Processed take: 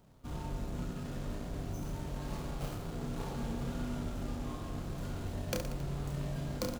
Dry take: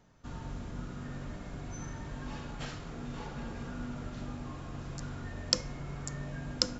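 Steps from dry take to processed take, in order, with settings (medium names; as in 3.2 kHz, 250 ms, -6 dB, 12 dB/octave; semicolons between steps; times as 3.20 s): median filter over 25 samples; treble shelf 4.4 kHz +11.5 dB; reverse bouncing-ball echo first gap 30 ms, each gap 1.3×, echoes 5; trim +1 dB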